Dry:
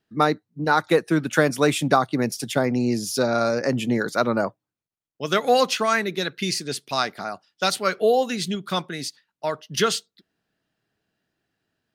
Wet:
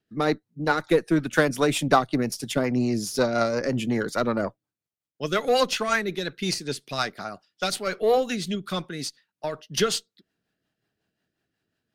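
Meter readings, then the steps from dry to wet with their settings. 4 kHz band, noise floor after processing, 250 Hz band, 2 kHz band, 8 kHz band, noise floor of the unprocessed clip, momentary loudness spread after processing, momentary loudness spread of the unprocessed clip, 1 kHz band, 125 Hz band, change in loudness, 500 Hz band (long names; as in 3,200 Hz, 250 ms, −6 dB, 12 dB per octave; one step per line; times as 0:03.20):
−2.5 dB, below −85 dBFS, −1.5 dB, −2.5 dB, −2.0 dB, below −85 dBFS, 11 LU, 10 LU, −4.0 dB, −2.0 dB, −2.5 dB, −2.0 dB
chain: harmonic generator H 8 −28 dB, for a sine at −2.5 dBFS
rotating-speaker cabinet horn 5.5 Hz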